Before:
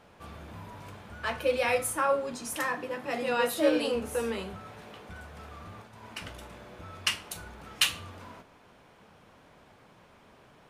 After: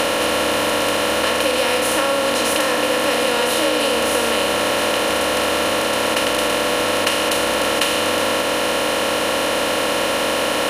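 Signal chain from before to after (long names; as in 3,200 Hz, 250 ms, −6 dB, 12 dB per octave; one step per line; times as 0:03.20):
compressor on every frequency bin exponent 0.2
downward compressor, threshold −20 dBFS, peak gain reduction 6.5 dB
level +5.5 dB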